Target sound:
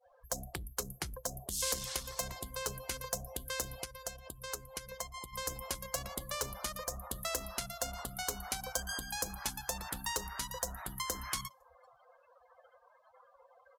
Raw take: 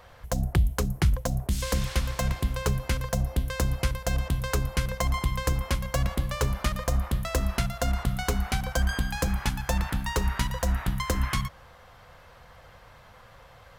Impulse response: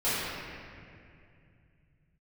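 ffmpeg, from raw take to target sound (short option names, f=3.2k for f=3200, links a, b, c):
-filter_complex "[0:a]asplit=2[a][b];[b]volume=26.5dB,asoftclip=hard,volume=-26.5dB,volume=-4dB[c];[a][c]amix=inputs=2:normalize=0,adynamicequalizer=threshold=0.01:dfrequency=2100:dqfactor=0.73:tfrequency=2100:tqfactor=0.73:attack=5:release=100:ratio=0.375:range=2:mode=cutabove:tftype=bell,alimiter=limit=-19dB:level=0:latency=1:release=326,asplit=2[d][e];[e]aecho=0:1:506:0.0841[f];[d][f]amix=inputs=2:normalize=0,asettb=1/sr,asplit=3[g][h][i];[g]atrim=end=3.834[j];[h]atrim=start=3.83:end=5.33,asetpts=PTS-STARTPTS,afade=t=in:d=0.004:c=qsin,afade=t=out:st=1.496:d=0.004:c=qsin,acompressor=threshold=-30dB:ratio=16[k];[i]atrim=start=5.326[l];[j][k]acrossfade=d=0.004:c1=hsin:c2=qsin[m];[m][l]acrossfade=d=0.004:c1=qsin:c2=hsin,bass=f=250:g=-14,treble=f=4k:g=10,afftdn=nr=34:nf=-41,volume=-5.5dB"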